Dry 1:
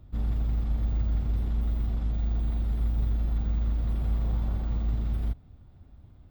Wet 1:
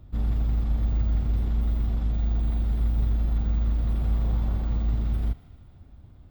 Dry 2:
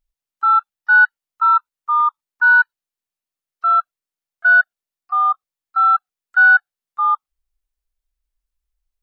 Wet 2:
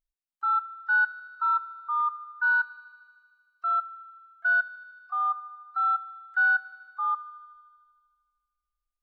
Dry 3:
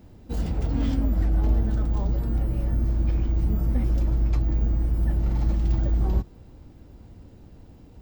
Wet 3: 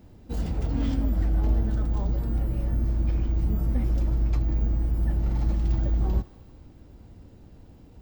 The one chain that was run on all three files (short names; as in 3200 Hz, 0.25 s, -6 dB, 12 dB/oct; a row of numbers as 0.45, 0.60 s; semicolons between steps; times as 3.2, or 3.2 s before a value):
thinning echo 77 ms, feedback 81%, high-pass 540 Hz, level -17.5 dB; match loudness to -27 LUFS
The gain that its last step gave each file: +2.5, -11.5, -1.5 dB